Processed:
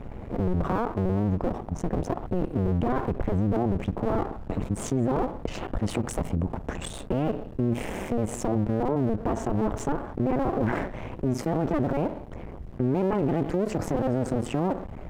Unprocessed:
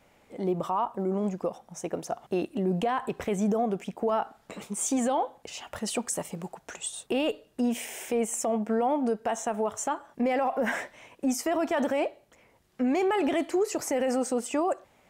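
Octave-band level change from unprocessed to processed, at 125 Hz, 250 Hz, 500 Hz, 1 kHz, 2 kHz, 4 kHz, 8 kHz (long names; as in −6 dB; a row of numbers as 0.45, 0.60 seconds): +13.0, +2.5, −0.5, −2.0, −3.5, −5.0, −8.5 decibels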